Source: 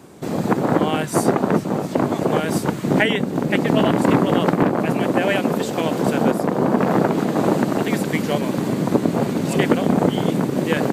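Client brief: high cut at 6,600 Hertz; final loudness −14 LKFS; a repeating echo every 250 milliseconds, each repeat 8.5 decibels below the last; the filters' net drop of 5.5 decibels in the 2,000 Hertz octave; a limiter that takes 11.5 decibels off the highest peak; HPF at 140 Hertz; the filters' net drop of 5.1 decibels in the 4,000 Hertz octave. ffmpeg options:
ffmpeg -i in.wav -af "highpass=140,lowpass=6600,equalizer=frequency=2000:width_type=o:gain=-6,equalizer=frequency=4000:width_type=o:gain=-4,alimiter=limit=-15dB:level=0:latency=1,aecho=1:1:250|500|750|1000:0.376|0.143|0.0543|0.0206,volume=10dB" out.wav

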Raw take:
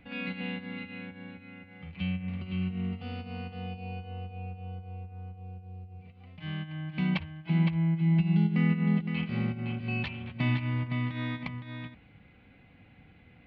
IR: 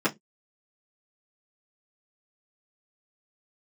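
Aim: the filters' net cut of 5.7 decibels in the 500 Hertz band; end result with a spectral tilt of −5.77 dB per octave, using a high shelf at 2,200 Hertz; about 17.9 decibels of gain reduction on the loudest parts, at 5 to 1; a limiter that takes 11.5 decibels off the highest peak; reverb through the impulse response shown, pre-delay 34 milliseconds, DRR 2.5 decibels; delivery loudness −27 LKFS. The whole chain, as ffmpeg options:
-filter_complex "[0:a]equalizer=frequency=500:width_type=o:gain=-8,highshelf=frequency=2200:gain=3.5,acompressor=threshold=-43dB:ratio=5,alimiter=level_in=17dB:limit=-24dB:level=0:latency=1,volume=-17dB,asplit=2[link_01][link_02];[1:a]atrim=start_sample=2205,adelay=34[link_03];[link_02][link_03]afir=irnorm=-1:irlink=0,volume=-15dB[link_04];[link_01][link_04]amix=inputs=2:normalize=0,volume=20.5dB"

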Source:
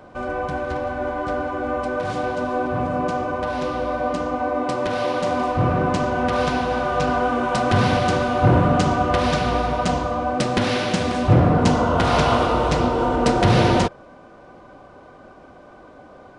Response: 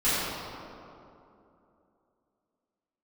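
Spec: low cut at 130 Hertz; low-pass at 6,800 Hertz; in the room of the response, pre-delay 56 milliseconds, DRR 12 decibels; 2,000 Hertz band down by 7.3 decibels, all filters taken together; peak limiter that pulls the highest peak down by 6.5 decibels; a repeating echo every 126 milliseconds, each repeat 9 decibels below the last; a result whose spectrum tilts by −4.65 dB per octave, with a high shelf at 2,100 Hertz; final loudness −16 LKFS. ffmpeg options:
-filter_complex "[0:a]highpass=130,lowpass=6800,equalizer=frequency=2000:width_type=o:gain=-6,highshelf=frequency=2100:gain=-9,alimiter=limit=-12dB:level=0:latency=1,aecho=1:1:126|252|378|504:0.355|0.124|0.0435|0.0152,asplit=2[link_01][link_02];[1:a]atrim=start_sample=2205,adelay=56[link_03];[link_02][link_03]afir=irnorm=-1:irlink=0,volume=-27dB[link_04];[link_01][link_04]amix=inputs=2:normalize=0,volume=7dB"

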